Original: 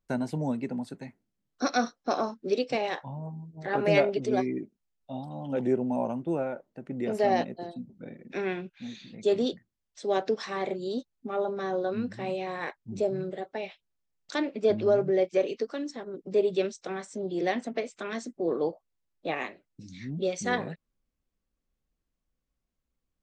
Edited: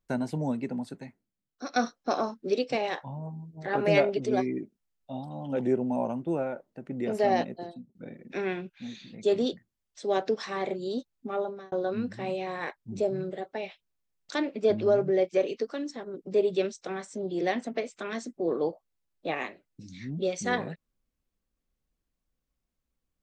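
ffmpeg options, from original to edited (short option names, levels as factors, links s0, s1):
-filter_complex "[0:a]asplit=4[s0][s1][s2][s3];[s0]atrim=end=1.76,asetpts=PTS-STARTPTS,afade=t=out:st=0.95:d=0.81:c=qua:silence=0.316228[s4];[s1]atrim=start=1.76:end=7.95,asetpts=PTS-STARTPTS,afade=t=in:d=0.004:c=hsin:silence=0.316228,afade=t=out:st=5.76:d=0.43:c=qsin[s5];[s2]atrim=start=7.95:end=11.72,asetpts=PTS-STARTPTS,afade=t=in:d=0.004:c=hsin,afade=t=out:st=3.4:d=0.37[s6];[s3]atrim=start=11.72,asetpts=PTS-STARTPTS,afade=t=in:d=0.004:c=hsin[s7];[s4][s5][s6][s7]concat=n=4:v=0:a=1"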